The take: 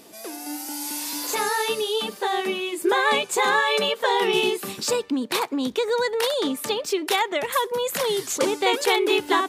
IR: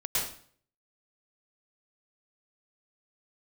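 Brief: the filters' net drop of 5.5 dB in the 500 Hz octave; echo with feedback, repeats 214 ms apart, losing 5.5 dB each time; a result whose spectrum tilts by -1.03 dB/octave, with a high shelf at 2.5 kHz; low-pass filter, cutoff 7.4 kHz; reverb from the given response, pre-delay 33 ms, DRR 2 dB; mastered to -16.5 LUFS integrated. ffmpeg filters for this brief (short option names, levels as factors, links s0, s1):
-filter_complex "[0:a]lowpass=7400,equalizer=f=500:t=o:g=-7,highshelf=f=2500:g=3,aecho=1:1:214|428|642|856|1070|1284|1498:0.531|0.281|0.149|0.079|0.0419|0.0222|0.0118,asplit=2[s0][s1];[1:a]atrim=start_sample=2205,adelay=33[s2];[s1][s2]afir=irnorm=-1:irlink=0,volume=0.335[s3];[s0][s3]amix=inputs=2:normalize=0,volume=1.58"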